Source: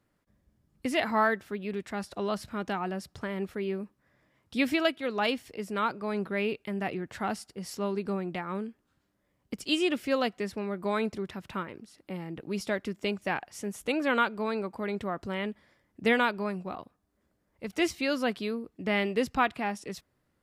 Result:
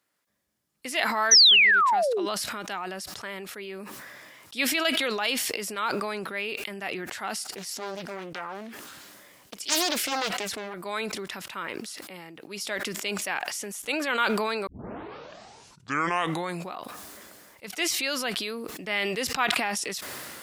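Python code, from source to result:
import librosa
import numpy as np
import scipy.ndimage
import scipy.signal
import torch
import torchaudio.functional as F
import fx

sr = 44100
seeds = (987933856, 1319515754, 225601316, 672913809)

y = fx.spec_paint(x, sr, seeds[0], shape='fall', start_s=1.31, length_s=0.95, low_hz=310.0, high_hz=6200.0, level_db=-20.0)
y = fx.doppler_dist(y, sr, depth_ms=0.77, at=(7.43, 10.74))
y = fx.edit(y, sr, fx.tape_start(start_s=14.67, length_s=2.04), tone=tone)
y = fx.highpass(y, sr, hz=820.0, slope=6)
y = fx.high_shelf(y, sr, hz=2800.0, db=8.0)
y = fx.sustainer(y, sr, db_per_s=21.0)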